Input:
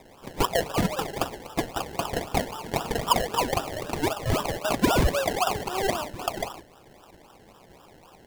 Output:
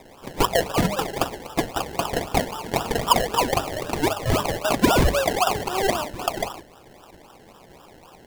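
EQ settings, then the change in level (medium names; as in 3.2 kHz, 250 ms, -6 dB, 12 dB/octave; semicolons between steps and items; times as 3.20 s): hum notches 50/100/150/200 Hz; +4.0 dB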